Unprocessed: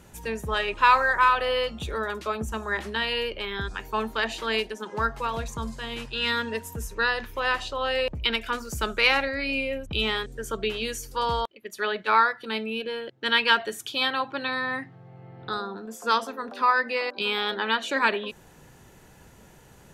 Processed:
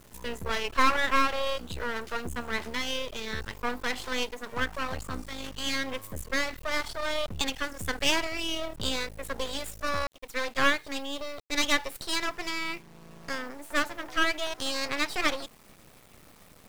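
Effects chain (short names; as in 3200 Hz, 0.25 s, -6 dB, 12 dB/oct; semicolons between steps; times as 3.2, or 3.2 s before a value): speed glide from 105% -> 134%; half-wave rectifier; bit-crush 9-bit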